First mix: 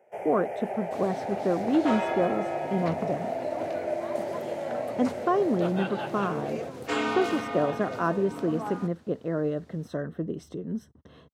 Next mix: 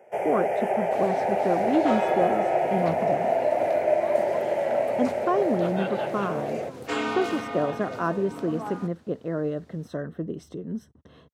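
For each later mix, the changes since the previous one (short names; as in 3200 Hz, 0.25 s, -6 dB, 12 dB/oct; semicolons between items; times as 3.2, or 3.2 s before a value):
first sound +8.5 dB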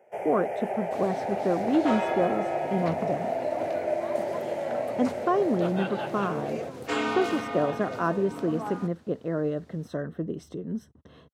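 first sound -6.0 dB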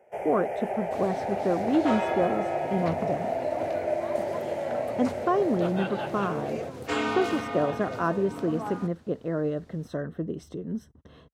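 speech: add bell 67 Hz -6 dB 1.2 oct; master: remove HPF 120 Hz 12 dB/oct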